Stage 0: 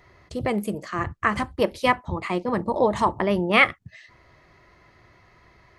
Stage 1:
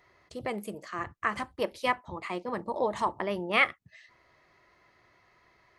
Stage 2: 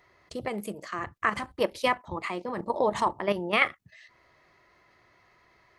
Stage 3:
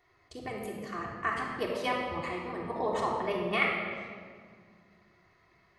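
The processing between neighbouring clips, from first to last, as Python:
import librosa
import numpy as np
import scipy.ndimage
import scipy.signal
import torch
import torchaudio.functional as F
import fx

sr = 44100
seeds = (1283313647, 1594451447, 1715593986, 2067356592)

y1 = fx.low_shelf(x, sr, hz=210.0, db=-11.5)
y1 = F.gain(torch.from_numpy(y1), -6.5).numpy()
y2 = fx.level_steps(y1, sr, step_db=10)
y2 = F.gain(torch.from_numpy(y2), 7.5).numpy()
y3 = fx.room_shoebox(y2, sr, seeds[0], volume_m3=3000.0, walls='mixed', distance_m=3.4)
y3 = F.gain(torch.from_numpy(y3), -8.5).numpy()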